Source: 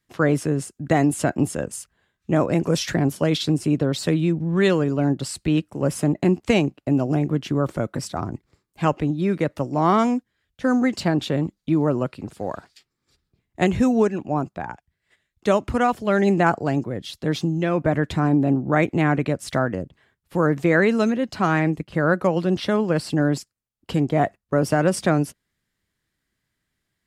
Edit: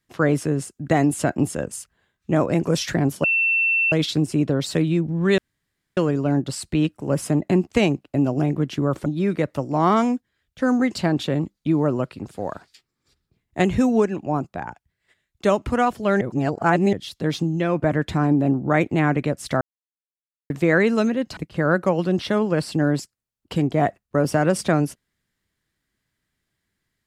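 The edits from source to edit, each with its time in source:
3.24 s: add tone 2.69 kHz -16.5 dBFS 0.68 s
4.70 s: insert room tone 0.59 s
7.79–9.08 s: delete
16.23–16.95 s: reverse
19.63–20.52 s: mute
21.39–21.75 s: delete

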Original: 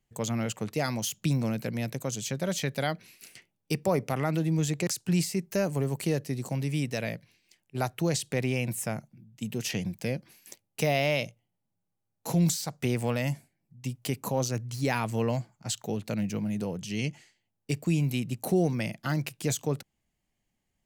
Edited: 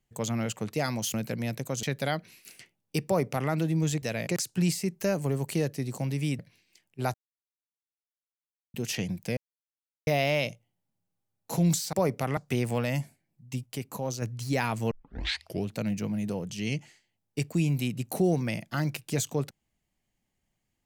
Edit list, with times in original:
1.14–1.49 s: delete
2.18–2.59 s: delete
3.82–4.26 s: copy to 12.69 s
6.90–7.15 s: move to 4.78 s
7.90–9.50 s: mute
10.13–10.83 s: mute
13.98–14.54 s: gain -4.5 dB
15.23 s: tape start 0.77 s

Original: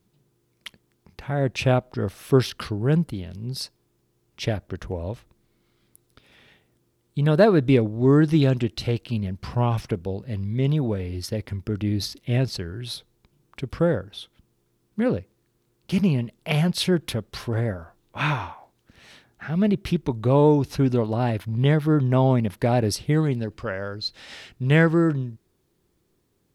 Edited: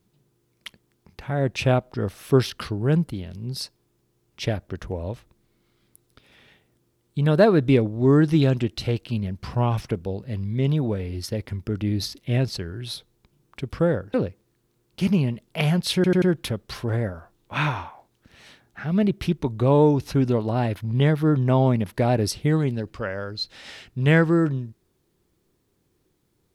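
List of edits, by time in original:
14.14–15.05 s: delete
16.86 s: stutter 0.09 s, 4 plays

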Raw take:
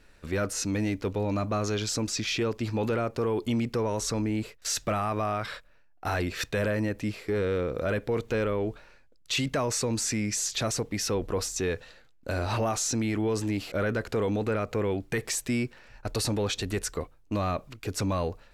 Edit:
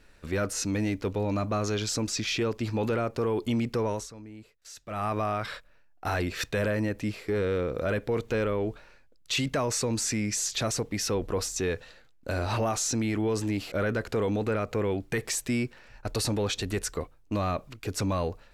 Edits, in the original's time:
3.91–5.05 s: dip -16.5 dB, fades 0.18 s

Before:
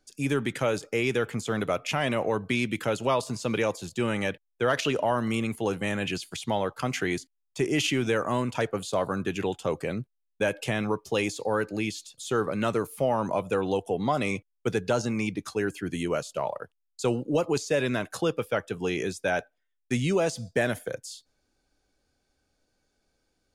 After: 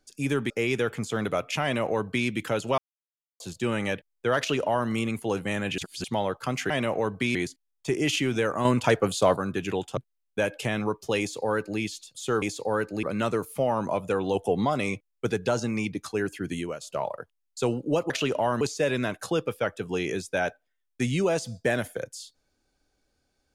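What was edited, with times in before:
0.50–0.86 s: delete
1.99–2.64 s: copy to 7.06 s
3.14–3.76 s: mute
4.74–5.25 s: copy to 17.52 s
6.14–6.40 s: reverse
8.36–9.07 s: gain +6 dB
9.68–10.00 s: delete
11.22–11.83 s: copy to 12.45 s
13.77–14.07 s: gain +3.5 dB
15.96–16.23 s: fade out, to -13.5 dB

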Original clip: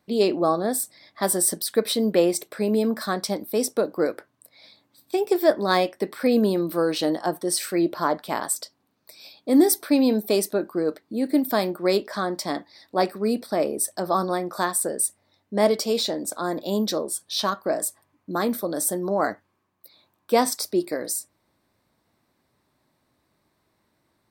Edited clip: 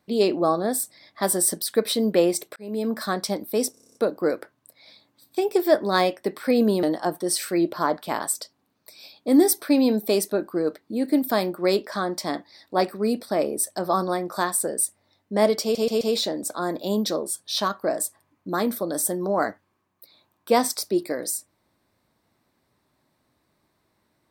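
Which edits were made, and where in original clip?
2.56–2.98 s: fade in
3.71 s: stutter 0.03 s, 9 plays
6.59–7.04 s: delete
15.83 s: stutter 0.13 s, 4 plays

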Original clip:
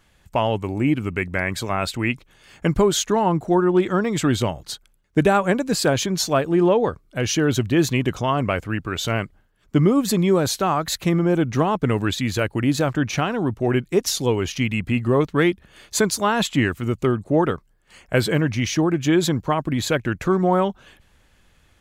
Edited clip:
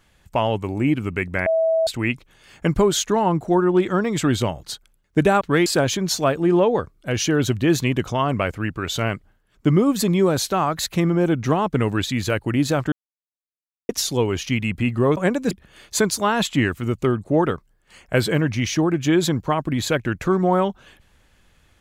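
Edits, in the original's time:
1.46–1.87 s: bleep 650 Hz -15.5 dBFS
5.41–5.75 s: swap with 15.26–15.51 s
13.01–13.98 s: mute

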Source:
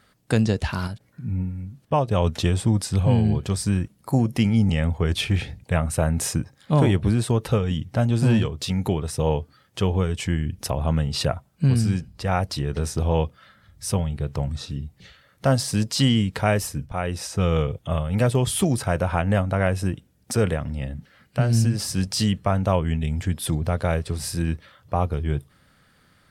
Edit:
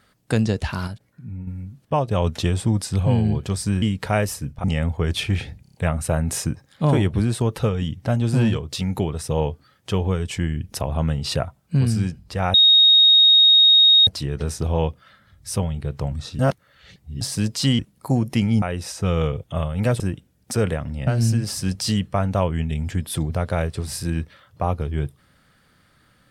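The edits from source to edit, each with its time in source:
0.92–1.47 s: fade out quadratic, to -7.5 dB
3.82–4.65 s: swap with 16.15–16.97 s
5.63 s: stutter 0.03 s, 5 plays
12.43 s: add tone 3.74 kHz -9.5 dBFS 1.53 s
14.75–15.57 s: reverse
18.35–19.80 s: delete
20.87–21.39 s: delete

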